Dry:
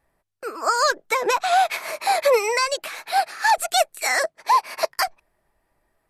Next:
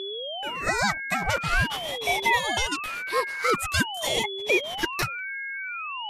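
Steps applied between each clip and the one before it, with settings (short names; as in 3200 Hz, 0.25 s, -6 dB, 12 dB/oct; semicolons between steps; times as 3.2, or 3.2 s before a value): whine 1900 Hz -25 dBFS; ring modulator with a swept carrier 890 Hz, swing 70%, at 0.46 Hz; gain -2.5 dB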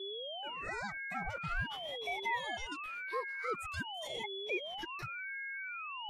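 limiter -18.5 dBFS, peak gain reduction 7.5 dB; spectral expander 1.5:1; gain -7 dB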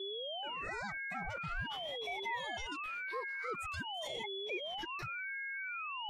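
in parallel at -2 dB: negative-ratio compressor -43 dBFS, ratio -1; on the sum: bell 11000 Hz -5 dB 0.6 oct; gain -4.5 dB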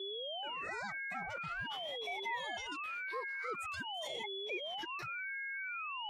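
HPF 230 Hz 6 dB/oct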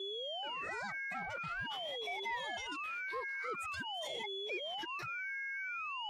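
soft clip -30.5 dBFS, distortion -26 dB; gain +1 dB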